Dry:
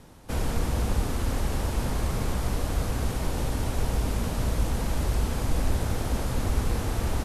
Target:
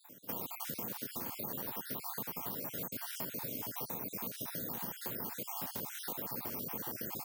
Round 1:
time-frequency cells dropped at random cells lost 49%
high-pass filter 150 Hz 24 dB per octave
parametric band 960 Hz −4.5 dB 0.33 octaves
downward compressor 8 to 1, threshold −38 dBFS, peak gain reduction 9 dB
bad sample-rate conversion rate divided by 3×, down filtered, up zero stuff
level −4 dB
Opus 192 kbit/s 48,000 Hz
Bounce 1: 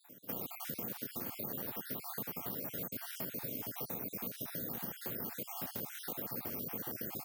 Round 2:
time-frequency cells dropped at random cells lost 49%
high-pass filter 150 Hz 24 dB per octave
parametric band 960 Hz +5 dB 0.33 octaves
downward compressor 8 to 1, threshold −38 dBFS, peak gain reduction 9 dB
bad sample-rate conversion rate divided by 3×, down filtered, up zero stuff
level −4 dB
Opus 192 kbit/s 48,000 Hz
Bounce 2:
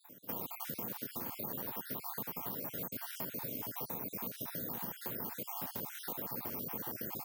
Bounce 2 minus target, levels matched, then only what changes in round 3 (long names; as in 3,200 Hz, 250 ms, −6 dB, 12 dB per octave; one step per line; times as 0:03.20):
8,000 Hz band −3.5 dB
add after downward compressor: high-shelf EQ 4,000 Hz +6 dB